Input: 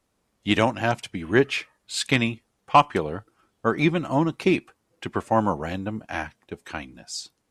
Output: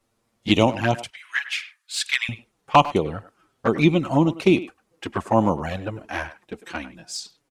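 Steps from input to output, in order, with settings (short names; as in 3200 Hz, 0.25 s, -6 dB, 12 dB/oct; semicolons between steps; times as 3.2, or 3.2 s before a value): 1.1–2.29 HPF 1400 Hz 24 dB/oct; envelope flanger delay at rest 8.8 ms, full sweep at -18 dBFS; speakerphone echo 0.1 s, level -14 dB; gain +4.5 dB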